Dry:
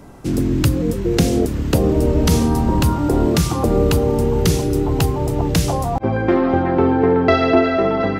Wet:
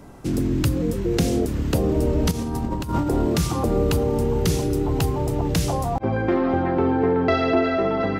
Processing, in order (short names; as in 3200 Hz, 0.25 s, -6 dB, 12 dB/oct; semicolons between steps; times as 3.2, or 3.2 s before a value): in parallel at -0.5 dB: limiter -13 dBFS, peak gain reduction 11.5 dB; 2.31–3.08 on the sum: negative-ratio compressor -15 dBFS, ratio -0.5; gain -8.5 dB